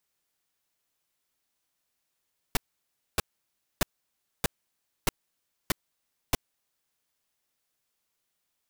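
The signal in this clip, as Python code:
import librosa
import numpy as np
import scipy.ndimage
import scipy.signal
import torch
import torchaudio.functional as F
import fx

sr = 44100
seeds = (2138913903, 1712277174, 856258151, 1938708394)

y = fx.noise_burst(sr, seeds[0], colour='pink', on_s=0.02, off_s=0.61, bursts=7, level_db=-23.0)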